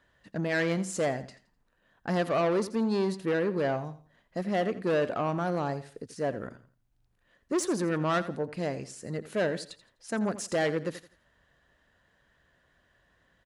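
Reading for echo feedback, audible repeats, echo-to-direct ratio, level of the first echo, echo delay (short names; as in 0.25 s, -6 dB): 29%, 2, -14.5 dB, -15.0 dB, 84 ms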